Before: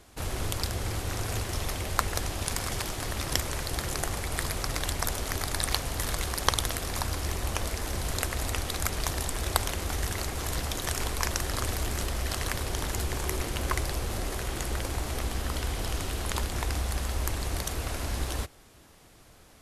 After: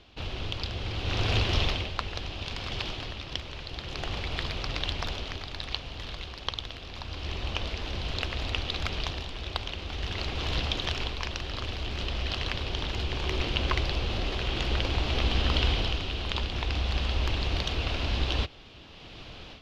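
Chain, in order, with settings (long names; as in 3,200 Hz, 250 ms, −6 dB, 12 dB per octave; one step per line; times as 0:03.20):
flat-topped bell 4,200 Hz +16 dB
automatic gain control
high-frequency loss of the air 410 metres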